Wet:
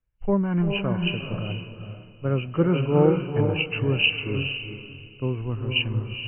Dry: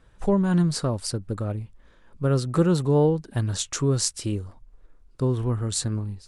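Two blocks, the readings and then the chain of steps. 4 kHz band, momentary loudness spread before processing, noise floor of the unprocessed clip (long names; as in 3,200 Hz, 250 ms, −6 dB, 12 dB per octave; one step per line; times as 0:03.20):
+6.5 dB, 10 LU, −54 dBFS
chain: hearing-aid frequency compression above 2,000 Hz 4 to 1
feedback delay with all-pass diffusion 453 ms, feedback 40%, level −3.5 dB
multiband upward and downward expander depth 70%
level −2.5 dB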